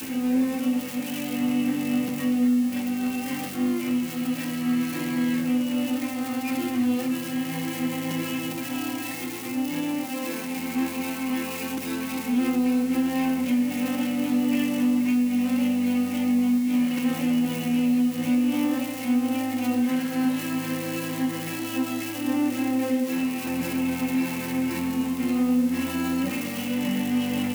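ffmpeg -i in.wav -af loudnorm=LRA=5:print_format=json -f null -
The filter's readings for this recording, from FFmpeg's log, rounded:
"input_i" : "-25.6",
"input_tp" : "-13.8",
"input_lra" : "4.3",
"input_thresh" : "-35.6",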